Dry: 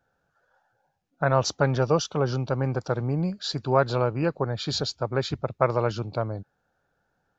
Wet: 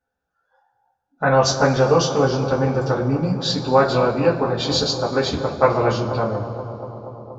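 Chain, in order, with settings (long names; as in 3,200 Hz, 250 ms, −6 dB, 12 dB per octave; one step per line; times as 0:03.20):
bucket-brigade delay 238 ms, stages 2,048, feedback 78%, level −12.5 dB
noise reduction from a noise print of the clip's start 14 dB
coupled-rooms reverb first 0.2 s, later 2.3 s, from −21 dB, DRR −5.5 dB
level +1 dB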